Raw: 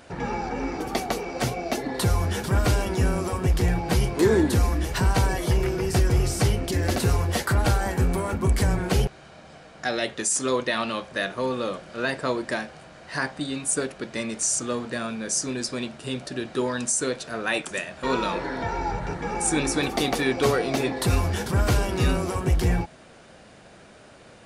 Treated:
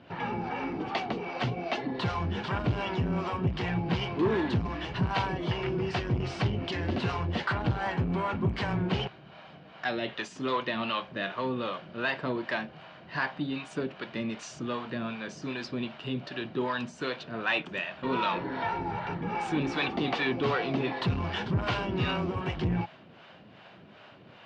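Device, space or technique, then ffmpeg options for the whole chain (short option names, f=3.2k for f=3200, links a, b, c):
guitar amplifier with harmonic tremolo: -filter_complex "[0:a]acrossover=split=500[a][b];[a]aeval=exprs='val(0)*(1-0.7/2+0.7/2*cos(2*PI*2.6*n/s))':c=same[c];[b]aeval=exprs='val(0)*(1-0.7/2-0.7/2*cos(2*PI*2.6*n/s))':c=same[d];[c][d]amix=inputs=2:normalize=0,asoftclip=type=tanh:threshold=-20.5dB,highpass=110,equalizer=f=110:t=q:w=4:g=5,equalizer=f=170:t=q:w=4:g=4,equalizer=f=490:t=q:w=4:g=-4,equalizer=f=1k:t=q:w=4:g=4,equalizer=f=2.9k:t=q:w=4:g=6,lowpass=f=4k:w=0.5412,lowpass=f=4k:w=1.3066"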